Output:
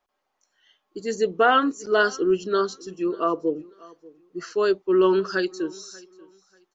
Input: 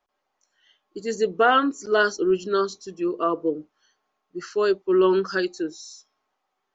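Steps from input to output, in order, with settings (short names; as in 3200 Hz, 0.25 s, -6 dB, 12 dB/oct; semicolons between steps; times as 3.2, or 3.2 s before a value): feedback echo 0.588 s, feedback 24%, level -23 dB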